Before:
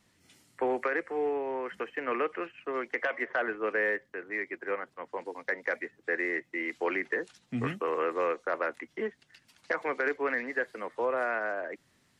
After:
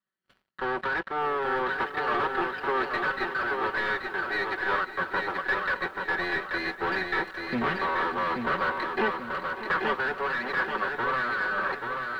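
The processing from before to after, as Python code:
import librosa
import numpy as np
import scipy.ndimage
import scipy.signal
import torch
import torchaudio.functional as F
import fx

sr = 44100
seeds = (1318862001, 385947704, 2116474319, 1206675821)

y = fx.lower_of_two(x, sr, delay_ms=0.69)
y = fx.highpass(y, sr, hz=1400.0, slope=6)
y = fx.peak_eq(y, sr, hz=2600.0, db=-9.0, octaves=0.48)
y = y + 0.68 * np.pad(y, (int(5.3 * sr / 1000.0), 0))[:len(y)]
y = fx.leveller(y, sr, passes=5)
y = fx.rider(y, sr, range_db=4, speed_s=0.5)
y = fx.air_absorb(y, sr, metres=420.0)
y = fx.echo_feedback(y, sr, ms=833, feedback_pct=39, wet_db=-4.5)
y = fx.echo_crushed(y, sr, ms=596, feedback_pct=35, bits=9, wet_db=-13.5)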